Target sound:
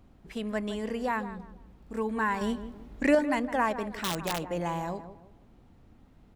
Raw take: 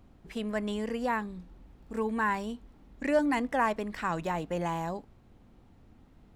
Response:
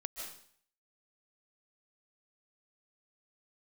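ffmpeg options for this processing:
-filter_complex "[0:a]asettb=1/sr,asplit=3[link_01][link_02][link_03];[link_01]atrim=end=2.414[link_04];[link_02]atrim=start=2.41:end=3.15,asetpts=PTS-STARTPTS,afade=type=in:duration=0.004:curve=qsin,afade=type=out:start_time=0.736:duration=0.004:curve=qsin,acontrast=66[link_05];[link_03]atrim=start=3.146[link_06];[link_04][link_05]acrossfade=duration=0.004:curve1=hsin:curve2=qsin[link_07];[link_07][link_06]acrossfade=duration=0.004:curve1=qsin:curve2=hsin,asplit=2[link_08][link_09];[link_09]adelay=161,lowpass=frequency=1400:poles=1,volume=-11dB,asplit=2[link_10][link_11];[link_11]adelay=161,lowpass=frequency=1400:poles=1,volume=0.35,asplit=2[link_12][link_13];[link_13]adelay=161,lowpass=frequency=1400:poles=1,volume=0.35,asplit=2[link_14][link_15];[link_15]adelay=161,lowpass=frequency=1400:poles=1,volume=0.35[link_16];[link_08][link_10][link_12][link_14][link_16]amix=inputs=5:normalize=0,asettb=1/sr,asplit=3[link_17][link_18][link_19];[link_17]atrim=end=3.854[link_20];[link_18]atrim=start=3.85:end=4.44,asetpts=PTS-STARTPTS,afade=type=in:duration=0.004:curve=qsin,afade=type=out:start_time=0.586:duration=0.004:curve=qsin,aeval=exprs='(mod(14.1*val(0)+1,2)-1)/14.1':channel_layout=same[link_21];[link_19]atrim=start=4.436[link_22];[link_20][link_21]acrossfade=duration=0.004:curve1=hsin:curve2=qsin[link_23];[link_23][link_22]acrossfade=duration=0.004:curve1=qsin:curve2=hsin"

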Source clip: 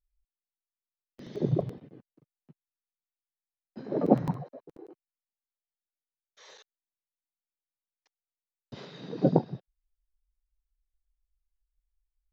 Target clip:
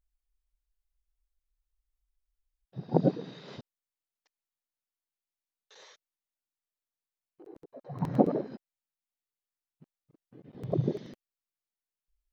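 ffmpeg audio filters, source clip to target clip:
ffmpeg -i in.wav -af "areverse,volume=-1.5dB" out.wav

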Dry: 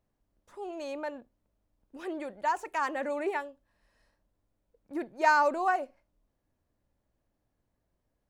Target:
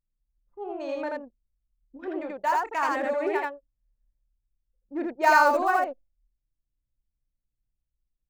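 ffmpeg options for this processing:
ffmpeg -i in.wav -af "acrusher=bits=7:mode=log:mix=0:aa=0.000001,anlmdn=0.398,aecho=1:1:29.15|81.63:0.316|0.891,volume=2.5dB" out.wav

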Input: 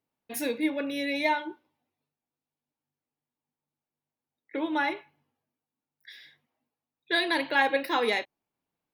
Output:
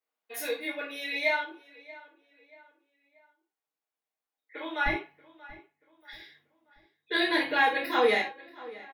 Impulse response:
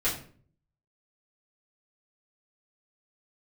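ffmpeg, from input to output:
-filter_complex "[0:a]asetnsamples=nb_out_samples=441:pad=0,asendcmd='4.86 highpass f 100',highpass=630,asplit=2[link_01][link_02];[link_02]adelay=633,lowpass=frequency=3000:poles=1,volume=-19dB,asplit=2[link_03][link_04];[link_04]adelay=633,lowpass=frequency=3000:poles=1,volume=0.44,asplit=2[link_05][link_06];[link_06]adelay=633,lowpass=frequency=3000:poles=1,volume=0.44[link_07];[link_01][link_03][link_05][link_07]amix=inputs=4:normalize=0[link_08];[1:a]atrim=start_sample=2205,atrim=end_sample=4410[link_09];[link_08][link_09]afir=irnorm=-1:irlink=0,volume=-8dB"

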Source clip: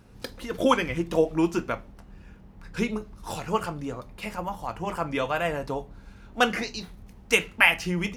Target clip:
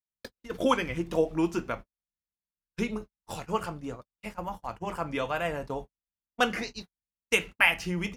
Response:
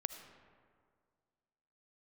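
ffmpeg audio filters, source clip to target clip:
-af "agate=range=-54dB:threshold=-34dB:ratio=16:detection=peak,volume=-3.5dB"

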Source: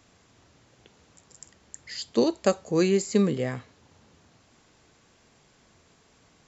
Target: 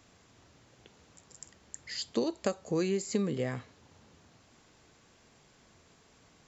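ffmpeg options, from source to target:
ffmpeg -i in.wav -af "acompressor=threshold=-26dB:ratio=4,volume=-1.5dB" out.wav

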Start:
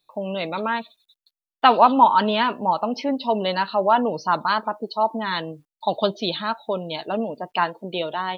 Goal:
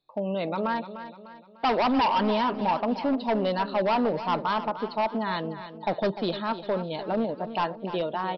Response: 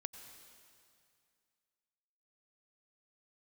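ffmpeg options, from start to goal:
-af "equalizer=frequency=3200:width_type=o:width=2.6:gain=-9,aresample=11025,volume=20.5dB,asoftclip=hard,volume=-20.5dB,aresample=44100,aecho=1:1:299|598|897|1196:0.251|0.111|0.0486|0.0214"

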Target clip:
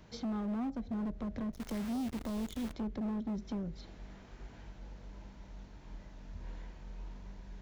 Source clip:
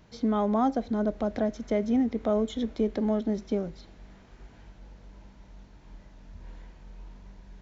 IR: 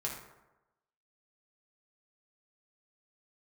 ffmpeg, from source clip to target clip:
-filter_complex "[0:a]acrossover=split=210[link_01][link_02];[link_02]acompressor=threshold=-40dB:ratio=20[link_03];[link_01][link_03]amix=inputs=2:normalize=0,asettb=1/sr,asplit=3[link_04][link_05][link_06];[link_04]atrim=end=1.524[link_07];[link_05]atrim=start=1.52:end=2.73,asetpts=PTS-STARTPTS,afade=type=in:duration=0.004:curve=qsin,afade=type=out:start_time=1.206:duration=0.004:curve=qsin,acrusher=bits=8:dc=4:mix=0:aa=0.000001[link_08];[link_06]atrim=start=2.726[link_09];[link_07][link_08]acrossfade=duration=0.004:curve1=hsin:curve2=qsin[link_10];[link_10][link_09]acrossfade=duration=0.004:curve1=qsin:curve2=hsin,asoftclip=type=hard:threshold=-33dB"

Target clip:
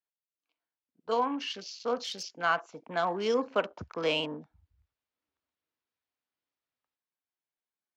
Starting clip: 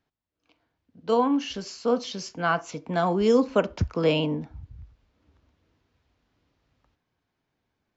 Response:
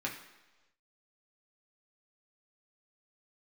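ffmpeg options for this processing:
-af "highpass=frequency=1000:poles=1,afwtdn=0.00562"

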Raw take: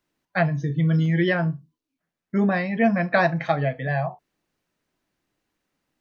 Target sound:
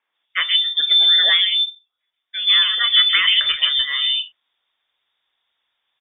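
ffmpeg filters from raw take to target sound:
ffmpeg -i in.wav -filter_complex "[0:a]lowpass=frequency=3100:width_type=q:width=0.5098,lowpass=frequency=3100:width_type=q:width=0.6013,lowpass=frequency=3100:width_type=q:width=0.9,lowpass=frequency=3100:width_type=q:width=2.563,afreqshift=-3700,acrossover=split=150|2600[link_01][link_02][link_03];[link_03]adelay=130[link_04];[link_01]adelay=290[link_05];[link_05][link_02][link_04]amix=inputs=3:normalize=0,volume=7dB" out.wav

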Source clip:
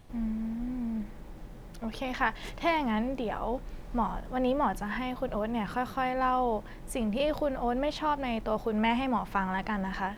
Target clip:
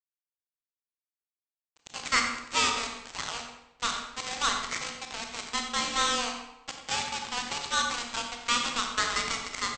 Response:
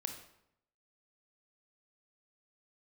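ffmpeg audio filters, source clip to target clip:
-filter_complex "[0:a]afreqshift=230,lowshelf=frequency=78:gain=8.5,asplit=2[link_01][link_02];[link_02]asoftclip=type=tanh:threshold=-22.5dB,volume=-11.5dB[link_03];[link_01][link_03]amix=inputs=2:normalize=0,asplit=2[link_04][link_05];[link_05]highpass=frequency=720:poles=1,volume=25dB,asoftclip=type=tanh:threshold=-12.5dB[link_06];[link_04][link_06]amix=inputs=2:normalize=0,lowpass=frequency=4600:poles=1,volume=-6dB,equalizer=frequency=260:width=0.5:gain=-14.5,aresample=16000,acrusher=bits=2:mix=0:aa=0.5,aresample=44100,asplit=2[link_07][link_08];[link_08]adelay=95,lowpass=frequency=3900:poles=1,volume=-9dB,asplit=2[link_09][link_10];[link_10]adelay=95,lowpass=frequency=3900:poles=1,volume=0.35,asplit=2[link_11][link_12];[link_12]adelay=95,lowpass=frequency=3900:poles=1,volume=0.35,asplit=2[link_13][link_14];[link_14]adelay=95,lowpass=frequency=3900:poles=1,volume=0.35[link_15];[link_07][link_09][link_11][link_13][link_15]amix=inputs=5:normalize=0[link_16];[1:a]atrim=start_sample=2205,asetrate=36603,aresample=44100[link_17];[link_16][link_17]afir=irnorm=-1:irlink=0,asetrate=45938,aresample=44100,volume=5.5dB"

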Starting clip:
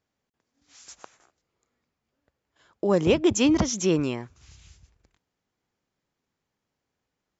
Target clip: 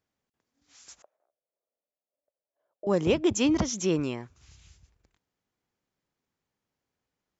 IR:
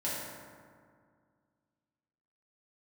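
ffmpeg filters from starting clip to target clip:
-filter_complex "[0:a]asettb=1/sr,asplit=3[link_01][link_02][link_03];[link_01]atrim=end=1.024[link_04];[link_02]atrim=start=1.02:end=2.87,asetpts=PTS-STARTPTS,afade=type=in:duration=0.004:curve=qsin,afade=type=out:start_time=1.846:duration=0.004:curve=qsin,bandpass=frequency=600:width_type=q:width=6.6:csg=0[link_05];[link_03]atrim=start=2.866[link_06];[link_04][link_05]acrossfade=duration=0.004:curve1=hsin:curve2=qsin[link_07];[link_07][link_06]acrossfade=duration=0.004:curve1=qsin:curve2=hsin,volume=-3.5dB"

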